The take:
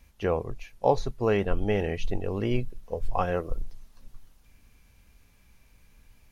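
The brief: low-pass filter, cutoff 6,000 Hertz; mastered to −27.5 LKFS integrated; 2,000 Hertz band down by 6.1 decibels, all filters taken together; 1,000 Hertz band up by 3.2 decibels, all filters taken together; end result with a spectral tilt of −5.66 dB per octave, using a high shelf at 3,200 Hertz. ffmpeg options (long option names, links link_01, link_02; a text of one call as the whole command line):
ffmpeg -i in.wav -af "lowpass=6000,equalizer=frequency=1000:width_type=o:gain=6.5,equalizer=frequency=2000:width_type=o:gain=-8,highshelf=frequency=3200:gain=-6.5,volume=1dB" out.wav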